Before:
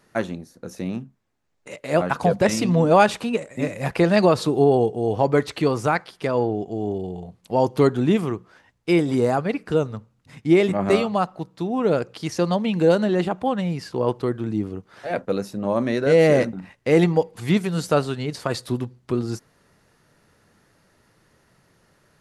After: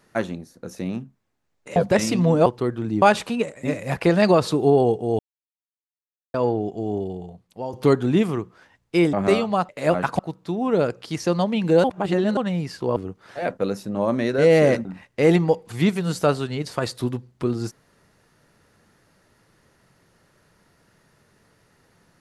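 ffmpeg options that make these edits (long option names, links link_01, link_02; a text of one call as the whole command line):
ffmpeg -i in.wav -filter_complex "[0:a]asplit=13[link_01][link_02][link_03][link_04][link_05][link_06][link_07][link_08][link_09][link_10][link_11][link_12][link_13];[link_01]atrim=end=1.762[link_14];[link_02]atrim=start=2.258:end=2.962[link_15];[link_03]atrim=start=14.078:end=14.642[link_16];[link_04]atrim=start=2.958:end=5.13,asetpts=PTS-STARTPTS,afade=type=out:start_time=2.168:duration=0.004:curve=hsin[link_17];[link_05]atrim=start=5.13:end=6.28,asetpts=PTS-STARTPTS,volume=0[link_18];[link_06]atrim=start=6.28:end=7.67,asetpts=PTS-STARTPTS,afade=type=in:duration=0.004:curve=hsin,afade=type=out:start_time=0.67:duration=0.72:silence=0.188365[link_19];[link_07]atrim=start=7.67:end=9.072,asetpts=PTS-STARTPTS,afade=type=in:duration=0.004:curve=hsin:silence=0.188365[link_20];[link_08]atrim=start=10.748:end=11.312[link_21];[link_09]atrim=start=1.758:end=2.262[link_22];[link_10]atrim=start=11.308:end=12.962[link_23];[link_11]atrim=start=12.958:end=13.492,asetpts=PTS-STARTPTS,areverse[link_24];[link_12]atrim=start=13.488:end=14.082[link_25];[link_13]atrim=start=14.638[link_26];[link_14][link_15]acrossfade=duration=0.004:curve1=hsin:curve2=hsin[link_27];[link_27][link_16]acrossfade=duration=0.004:curve1=hsin:curve2=hsin[link_28];[link_17][link_18][link_19][link_20]concat=n=4:v=0:a=1[link_29];[link_28][link_29]acrossfade=duration=0.004:curve1=hsin:curve2=hsin[link_30];[link_30][link_21]acrossfade=duration=0.004:curve1=hsin:curve2=hsin[link_31];[link_31][link_22]acrossfade=duration=0.004:curve1=hsin:curve2=hsin[link_32];[link_32][link_23]acrossfade=duration=0.004:curve1=hsin:curve2=hsin[link_33];[link_33][link_24]acrossfade=duration=0.004:curve1=hsin:curve2=hsin[link_34];[link_34][link_25]acrossfade=duration=0.004:curve1=hsin:curve2=hsin[link_35];[link_35][link_26]acrossfade=duration=0.004:curve1=hsin:curve2=hsin" out.wav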